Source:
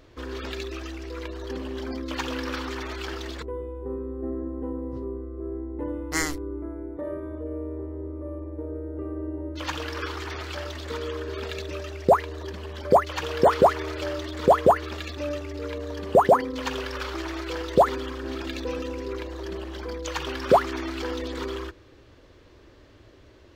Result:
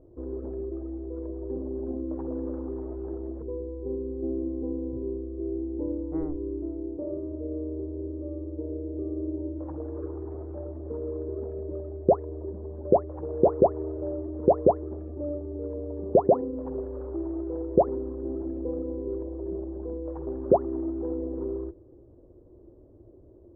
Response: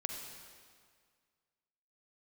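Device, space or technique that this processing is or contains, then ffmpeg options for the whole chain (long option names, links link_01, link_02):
under water: -af "lowpass=frequency=660:width=0.5412,lowpass=frequency=660:width=1.3066,equalizer=frequency=350:width_type=o:width=0.27:gain=7,volume=-1.5dB"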